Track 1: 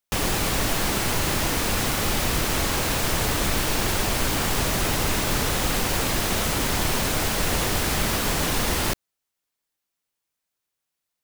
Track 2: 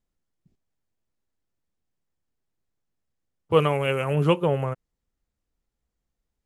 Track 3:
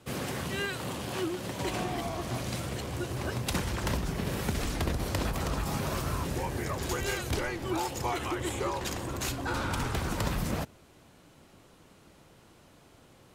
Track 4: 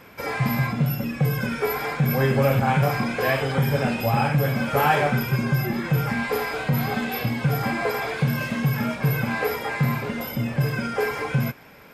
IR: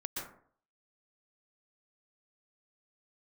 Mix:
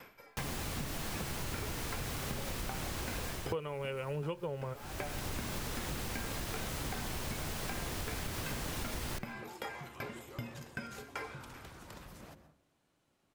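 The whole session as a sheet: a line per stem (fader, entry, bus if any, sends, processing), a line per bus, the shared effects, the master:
-13.5 dB, 0.25 s, no bus, send -20 dB, octaver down 1 oct, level +1 dB; auto duck -12 dB, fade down 0.25 s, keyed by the second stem
+1.0 dB, 0.00 s, no bus, no send, comb 2.1 ms, depth 32%
-19.5 dB, 1.70 s, bus A, send -9.5 dB, dry
-2.0 dB, 0.00 s, bus A, send -21 dB, dB-ramp tremolo decaying 2.6 Hz, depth 39 dB
bus A: 0.0 dB, low shelf 320 Hz -7 dB; compressor, threshold -38 dBFS, peak gain reduction 14 dB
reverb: on, RT60 0.55 s, pre-delay 0.112 s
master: compressor 20:1, threshold -34 dBFS, peak gain reduction 24.5 dB

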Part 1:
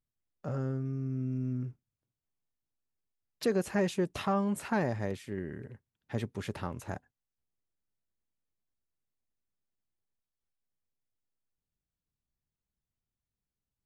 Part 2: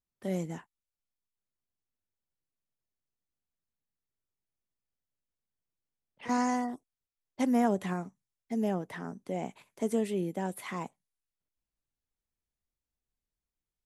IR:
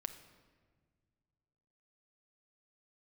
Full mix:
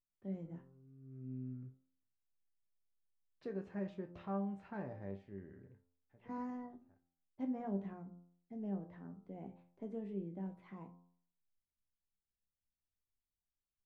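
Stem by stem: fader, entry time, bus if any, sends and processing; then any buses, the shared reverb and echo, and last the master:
-3.0 dB, 0.00 s, no send, auto duck -22 dB, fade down 0.25 s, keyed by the second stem
-6.0 dB, 0.00 s, no send, low shelf 280 Hz +11.5 dB; notches 60/120/180/240 Hz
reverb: off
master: tape spacing loss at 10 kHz 36 dB; resonator bank C2 sus4, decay 0.24 s; de-hum 87.41 Hz, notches 16

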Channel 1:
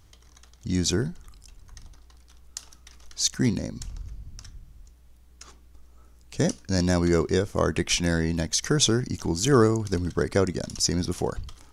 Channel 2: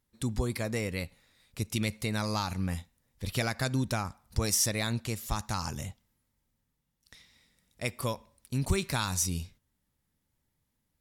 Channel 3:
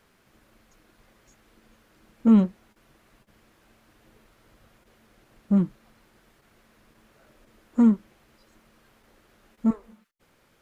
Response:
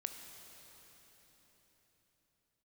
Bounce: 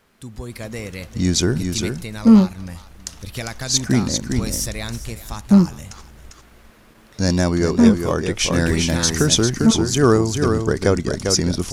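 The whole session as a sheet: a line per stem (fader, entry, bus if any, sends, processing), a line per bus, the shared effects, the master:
-0.5 dB, 0.50 s, muted 6.3–7.18, no send, echo send -5.5 dB, dry
-5.0 dB, 0.00 s, no send, echo send -16 dB, dry
+2.5 dB, 0.00 s, no send, no echo send, dry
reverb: off
echo: echo 0.399 s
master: AGC gain up to 7 dB

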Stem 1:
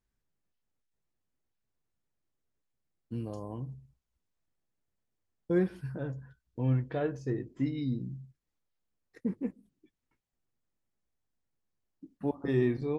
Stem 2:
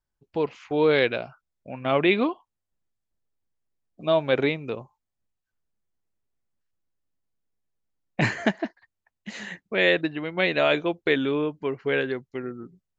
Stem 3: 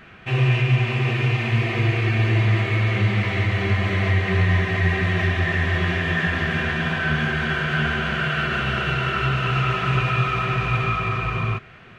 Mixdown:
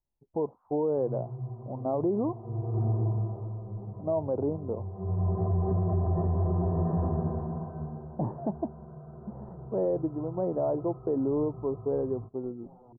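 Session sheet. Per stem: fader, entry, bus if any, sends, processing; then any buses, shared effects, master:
-4.0 dB, 0.20 s, no send, compressor 10:1, threshold -36 dBFS, peak gain reduction 14.5 dB; wrapped overs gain 38.5 dB; spectral expander 1.5:1
-2.0 dB, 0.00 s, no send, dry
0.0 dB, 0.70 s, no send, notch comb 280 Hz; auto duck -18 dB, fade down 1.15 s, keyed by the second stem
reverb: off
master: steep low-pass 970 Hz 48 dB/oct; limiter -20 dBFS, peak gain reduction 9 dB

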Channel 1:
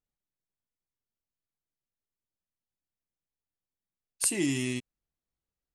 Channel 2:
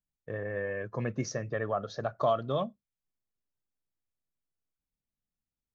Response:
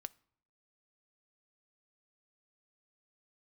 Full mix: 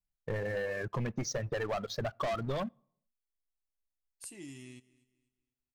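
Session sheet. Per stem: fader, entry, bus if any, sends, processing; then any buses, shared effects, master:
-19.0 dB, 0.00 s, no send, echo send -21.5 dB, dry
-2.5 dB, 0.00 s, send -8 dB, no echo send, reverb removal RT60 1.9 s; sample leveller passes 2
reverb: on, RT60 0.65 s, pre-delay 5 ms
echo: feedback echo 0.246 s, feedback 31%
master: soft clip -25.5 dBFS, distortion -13 dB; low shelf 67 Hz +11 dB; compressor, threshold -31 dBFS, peak gain reduction 6 dB

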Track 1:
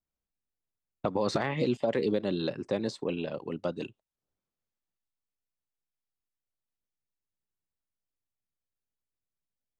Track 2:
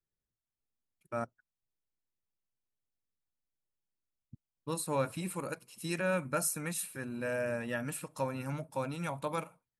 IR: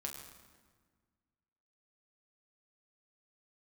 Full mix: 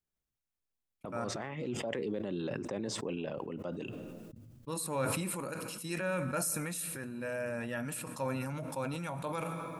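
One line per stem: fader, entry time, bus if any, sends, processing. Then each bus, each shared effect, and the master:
-5.0 dB, 0.00 s, send -22 dB, bell 4200 Hz -13.5 dB 0.33 oct; limiter -23 dBFS, peak gain reduction 7 dB; auto duck -6 dB, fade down 1.10 s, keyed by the second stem
-4.5 dB, 0.00 s, send -10 dB, dry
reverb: on, RT60 1.6 s, pre-delay 7 ms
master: sustainer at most 21 dB/s

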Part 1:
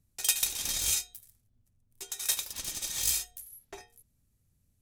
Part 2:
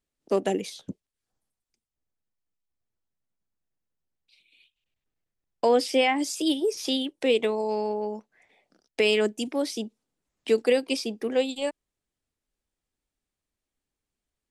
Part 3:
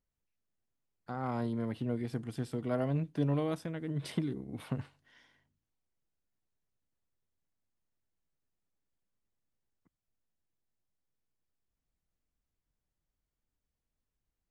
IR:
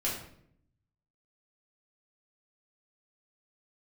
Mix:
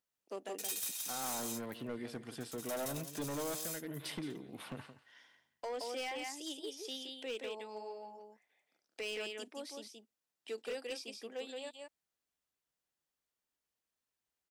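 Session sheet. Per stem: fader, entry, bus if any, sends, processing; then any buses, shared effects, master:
-15.0 dB, 0.40 s, no send, echo send -11.5 dB, high shelf 11000 Hz +8.5 dB; sample leveller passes 3; auto duck -14 dB, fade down 2.00 s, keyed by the third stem
-14.0 dB, 0.00 s, no send, echo send -4 dB, dry
+2.5 dB, 0.00 s, no send, echo send -14.5 dB, dry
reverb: off
echo: echo 0.172 s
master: HPF 730 Hz 6 dB/oct; notch 2200 Hz, Q 25; hard clip -35 dBFS, distortion -11 dB

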